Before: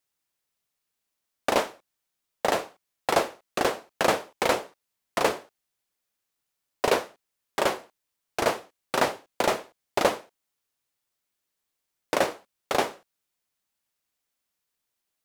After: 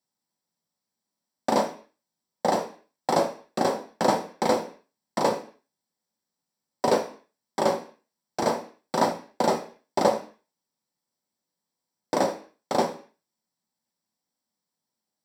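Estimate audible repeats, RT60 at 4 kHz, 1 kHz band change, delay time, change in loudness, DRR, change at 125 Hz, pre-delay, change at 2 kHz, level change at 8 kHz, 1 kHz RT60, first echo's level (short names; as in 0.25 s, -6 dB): none, 0.45 s, +1.5 dB, none, +0.5 dB, 3.0 dB, +4.5 dB, 3 ms, -6.5 dB, -2.0 dB, 0.45 s, none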